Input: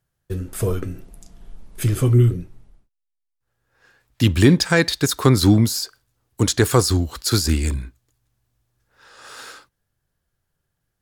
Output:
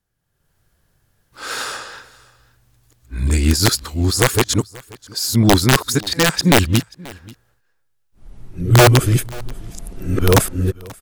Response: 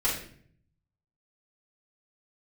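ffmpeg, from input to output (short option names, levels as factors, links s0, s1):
-af "areverse,adynamicequalizer=threshold=0.0355:dfrequency=110:dqfactor=7.8:tfrequency=110:tqfactor=7.8:attack=5:release=100:ratio=0.375:range=2:mode=cutabove:tftype=bell,dynaudnorm=f=170:g=5:m=4.47,aeval=exprs='(mod(1.5*val(0)+1,2)-1)/1.5':c=same,aecho=1:1:534:0.0708"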